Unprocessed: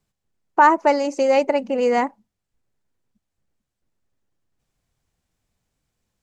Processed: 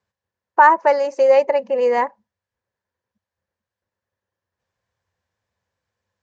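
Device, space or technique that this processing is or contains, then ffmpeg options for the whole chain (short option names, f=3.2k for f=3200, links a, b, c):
car door speaker: -filter_complex "[0:a]highpass=90,equalizer=f=90:t=q:w=4:g=9,equalizer=f=150:t=q:w=4:g=-8,equalizer=f=280:t=q:w=4:g=-9,equalizer=f=530:t=q:w=4:g=9,equalizer=f=990:t=q:w=4:g=9,equalizer=f=1.7k:t=q:w=4:g=10,lowpass=f=6.6k:w=0.5412,lowpass=f=6.6k:w=1.3066,asettb=1/sr,asplit=3[a][b][c];[a]atrim=end=1.224[d];[b]atrim=start=1.22:end=2.02,asetpts=PTS-STARTPTS,afade=t=in:d=0.004:c=qsin,afade=t=out:st=0.796:d=0.004:c=qsin,bandreject=f=1.5k:w=6[e];[c]atrim=start=2.016[f];[d][e]acrossfade=d=0.004:c1=hsin:c2=qsin[g];[g][f]acrossfade=d=0.004:c1=qsin:c2=hsin,volume=-4dB"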